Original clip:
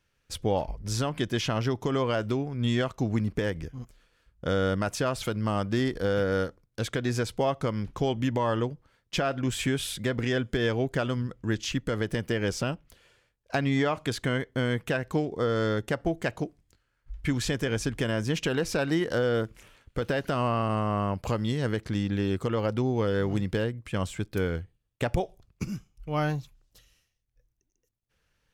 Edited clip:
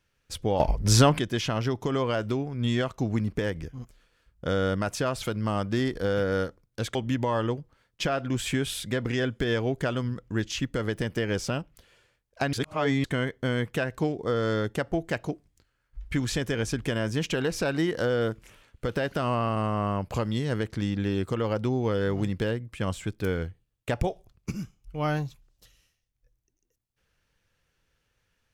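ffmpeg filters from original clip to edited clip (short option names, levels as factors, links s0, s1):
-filter_complex "[0:a]asplit=6[s0][s1][s2][s3][s4][s5];[s0]atrim=end=0.602[s6];[s1]atrim=start=0.598:end=1.192,asetpts=PTS-STARTPTS,volume=3.35[s7];[s2]atrim=start=1.188:end=6.952[s8];[s3]atrim=start=8.078:end=13.662[s9];[s4]atrim=start=13.658:end=14.172,asetpts=PTS-STARTPTS,areverse[s10];[s5]atrim=start=14.168[s11];[s6][s7]acrossfade=d=0.004:c1=hsin:c2=hsin[s12];[s12][s8]acrossfade=d=0.004:c1=hsin:c2=hsin[s13];[s13][s9]acrossfade=d=0.004:c1=hsin:c2=hsin[s14];[s14][s10]acrossfade=d=0.004:c1=hsin:c2=hsin[s15];[s15][s11]acrossfade=d=0.004:c1=hsin:c2=hsin"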